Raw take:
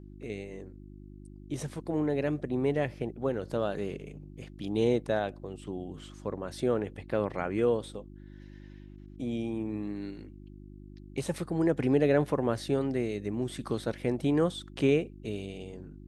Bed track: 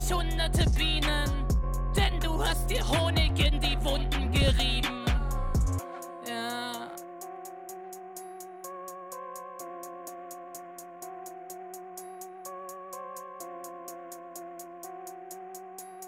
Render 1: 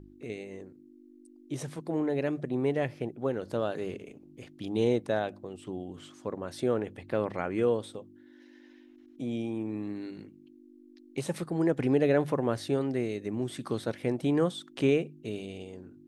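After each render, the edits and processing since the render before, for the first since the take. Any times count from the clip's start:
hum removal 50 Hz, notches 4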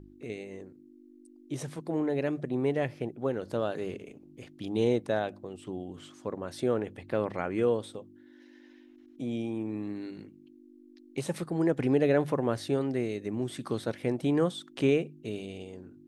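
no processing that can be heard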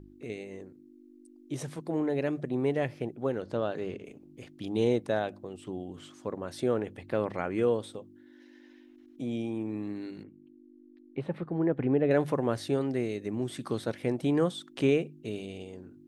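0:03.42–0:04.04: high-frequency loss of the air 74 metres
0:10.23–0:12.11: high-frequency loss of the air 500 metres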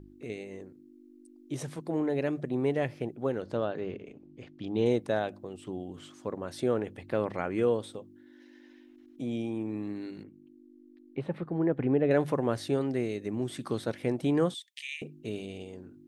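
0:03.65–0:04.86: high-frequency loss of the air 130 metres
0:14.54–0:15.02: Chebyshev high-pass filter 1,800 Hz, order 8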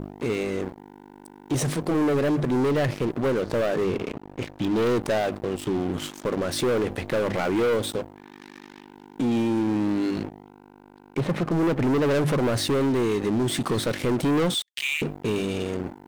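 leveller curve on the samples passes 5
brickwall limiter −19 dBFS, peak gain reduction 6.5 dB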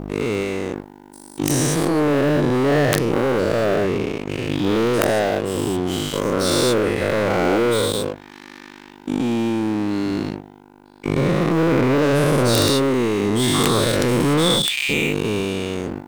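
every bin's largest magnitude spread in time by 240 ms
wrap-around overflow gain 6 dB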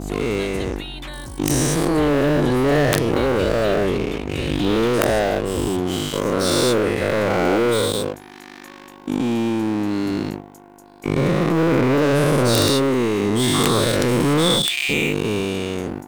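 mix in bed track −6 dB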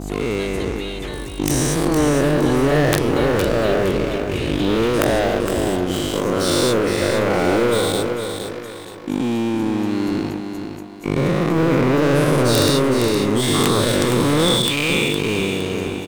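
repeating echo 463 ms, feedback 36%, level −7 dB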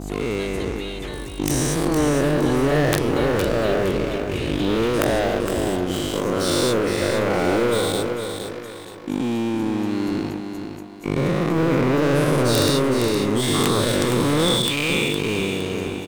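level −2.5 dB

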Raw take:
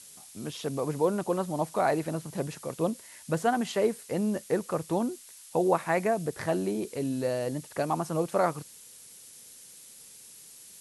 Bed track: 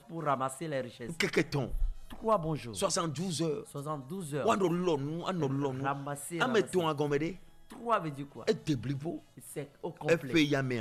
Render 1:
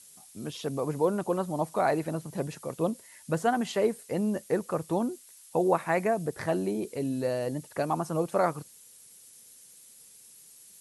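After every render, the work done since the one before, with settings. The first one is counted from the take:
broadband denoise 6 dB, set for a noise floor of −51 dBFS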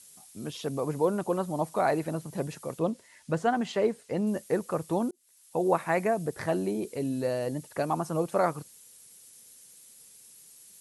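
0:02.79–0:04.27: high-frequency loss of the air 58 metres
0:05.11–0:05.73: fade in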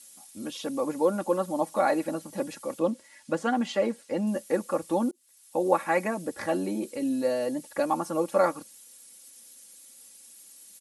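high-pass filter 150 Hz 6 dB per octave
comb filter 3.6 ms, depth 84%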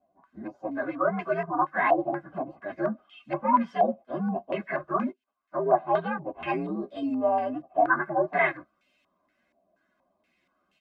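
partials spread apart or drawn together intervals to 123%
low-pass on a step sequencer 4.2 Hz 730–2,700 Hz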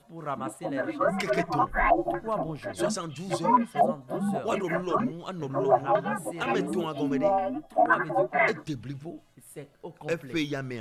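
mix in bed track −2.5 dB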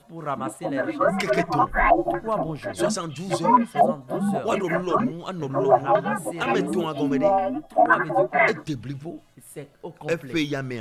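level +4.5 dB

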